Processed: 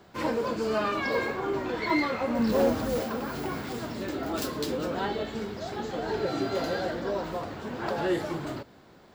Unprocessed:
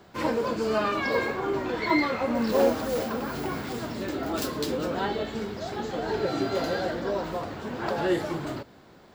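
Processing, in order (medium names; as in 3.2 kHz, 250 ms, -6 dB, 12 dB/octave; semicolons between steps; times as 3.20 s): 2.39–2.99 s: tone controls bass +7 dB, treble 0 dB; in parallel at -5 dB: hard clipper -20.5 dBFS, distortion -14 dB; on the sum: trim -5.5 dB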